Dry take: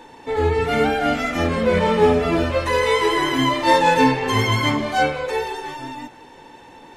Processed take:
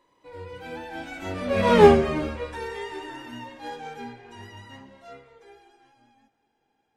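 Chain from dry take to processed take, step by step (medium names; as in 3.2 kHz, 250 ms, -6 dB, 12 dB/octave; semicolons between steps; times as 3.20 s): Doppler pass-by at 1.81 s, 34 m/s, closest 3.2 m; trim +3.5 dB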